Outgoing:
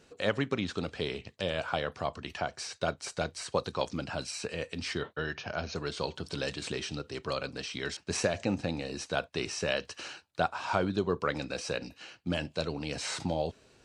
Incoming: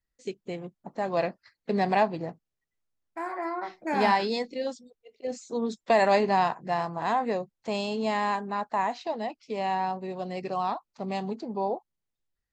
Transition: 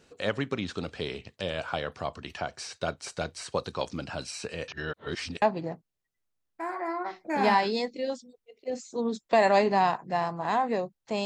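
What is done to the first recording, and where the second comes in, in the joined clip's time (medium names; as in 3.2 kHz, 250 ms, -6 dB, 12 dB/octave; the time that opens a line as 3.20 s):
outgoing
4.68–5.42 s: reverse
5.42 s: go over to incoming from 1.99 s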